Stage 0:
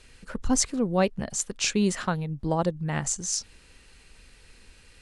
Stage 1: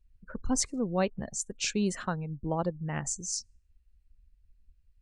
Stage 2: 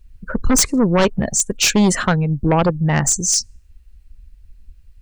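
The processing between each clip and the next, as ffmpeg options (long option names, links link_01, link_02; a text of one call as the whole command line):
ffmpeg -i in.wav -af "afftdn=noise_reduction=32:noise_floor=-41,volume=-5dB" out.wav
ffmpeg -i in.wav -af "aeval=exprs='0.2*sin(PI/2*3.16*val(0)/0.2)':channel_layout=same,volume=4.5dB" out.wav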